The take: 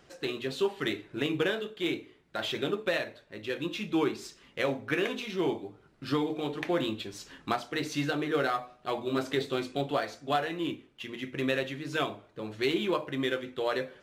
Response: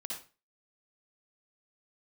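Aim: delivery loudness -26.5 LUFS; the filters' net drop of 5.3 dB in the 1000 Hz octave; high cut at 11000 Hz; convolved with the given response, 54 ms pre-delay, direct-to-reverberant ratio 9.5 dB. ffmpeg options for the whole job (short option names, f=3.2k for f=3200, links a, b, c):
-filter_complex "[0:a]lowpass=11k,equalizer=f=1k:t=o:g=-8,asplit=2[a][b];[1:a]atrim=start_sample=2205,adelay=54[c];[b][c]afir=irnorm=-1:irlink=0,volume=-9dB[d];[a][d]amix=inputs=2:normalize=0,volume=6.5dB"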